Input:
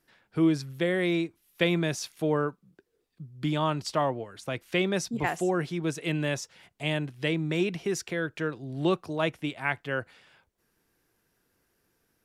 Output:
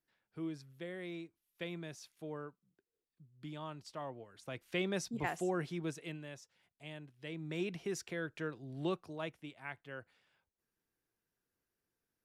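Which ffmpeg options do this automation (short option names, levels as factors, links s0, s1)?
-af "volume=1.19,afade=t=in:st=3.98:d=0.94:silence=0.334965,afade=t=out:st=5.79:d=0.42:silence=0.281838,afade=t=in:st=7.22:d=0.5:silence=0.316228,afade=t=out:st=8.71:d=0.72:silence=0.446684"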